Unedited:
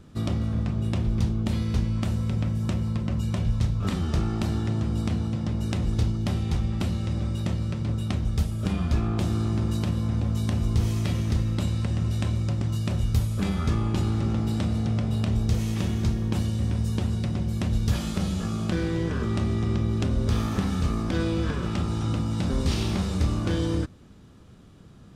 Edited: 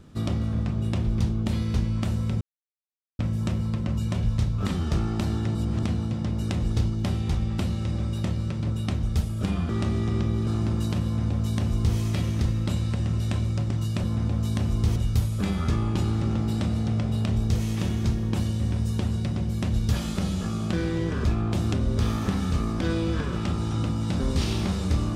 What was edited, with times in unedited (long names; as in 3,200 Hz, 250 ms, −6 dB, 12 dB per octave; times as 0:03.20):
0:02.41: splice in silence 0.78 s
0:04.77–0:05.05: reverse
0:08.91–0:09.38: swap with 0:19.24–0:20.02
0:09.96–0:10.88: duplicate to 0:12.95